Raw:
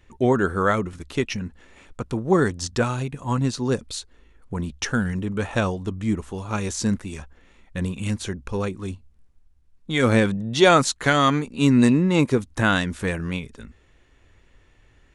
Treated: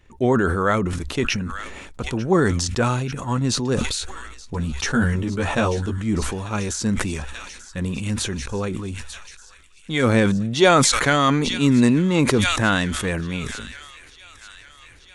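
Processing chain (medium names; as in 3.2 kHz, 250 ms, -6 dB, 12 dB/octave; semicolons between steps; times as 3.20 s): 3.98–5.98 s: doubling 13 ms -2.5 dB; feedback echo behind a high-pass 890 ms, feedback 73%, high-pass 2.1 kHz, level -15 dB; decay stretcher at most 32 dB/s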